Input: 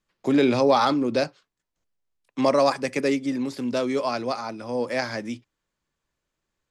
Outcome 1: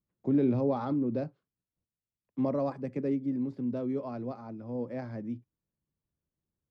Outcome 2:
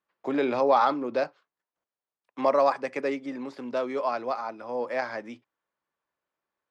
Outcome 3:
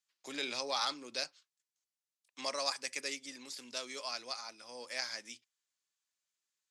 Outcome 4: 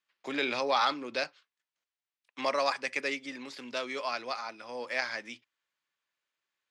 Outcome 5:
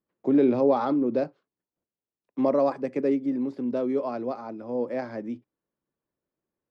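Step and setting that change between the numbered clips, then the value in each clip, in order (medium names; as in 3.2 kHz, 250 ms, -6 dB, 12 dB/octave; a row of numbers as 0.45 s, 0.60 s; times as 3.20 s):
band-pass filter, frequency: 120 Hz, 930 Hz, 7.1 kHz, 2.5 kHz, 330 Hz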